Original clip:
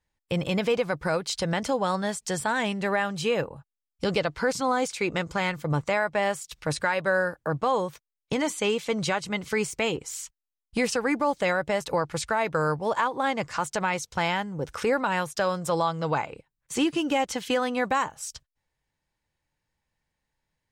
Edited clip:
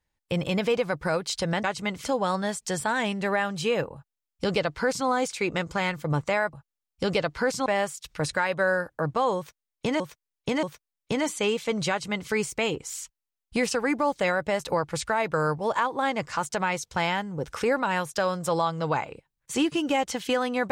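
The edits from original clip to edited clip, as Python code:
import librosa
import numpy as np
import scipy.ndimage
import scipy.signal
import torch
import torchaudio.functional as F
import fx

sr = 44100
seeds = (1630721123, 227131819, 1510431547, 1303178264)

y = fx.edit(x, sr, fx.duplicate(start_s=3.54, length_s=1.13, to_s=6.13),
    fx.repeat(start_s=7.84, length_s=0.63, count=3),
    fx.duplicate(start_s=9.11, length_s=0.4, to_s=1.64), tone=tone)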